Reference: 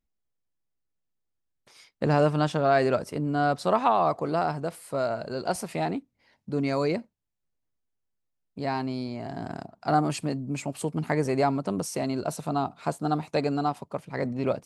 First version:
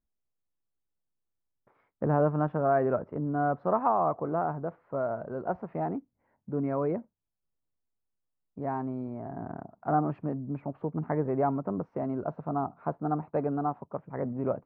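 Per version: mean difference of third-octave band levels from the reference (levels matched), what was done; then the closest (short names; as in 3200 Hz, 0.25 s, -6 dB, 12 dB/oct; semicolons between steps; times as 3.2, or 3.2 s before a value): 6.0 dB: LPF 1400 Hz 24 dB/oct; gain -3 dB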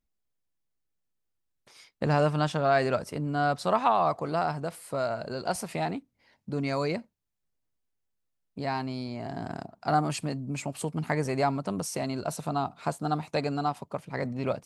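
1.5 dB: dynamic EQ 350 Hz, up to -5 dB, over -35 dBFS, Q 0.94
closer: second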